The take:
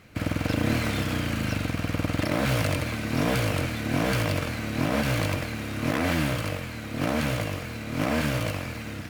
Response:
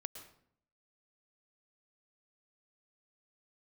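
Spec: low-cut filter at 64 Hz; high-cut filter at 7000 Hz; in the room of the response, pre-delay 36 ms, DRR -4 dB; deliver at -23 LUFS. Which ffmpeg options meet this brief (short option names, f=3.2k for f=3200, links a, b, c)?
-filter_complex "[0:a]highpass=64,lowpass=7k,asplit=2[a][b];[1:a]atrim=start_sample=2205,adelay=36[c];[b][c]afir=irnorm=-1:irlink=0,volume=7dB[d];[a][d]amix=inputs=2:normalize=0,volume=-1dB"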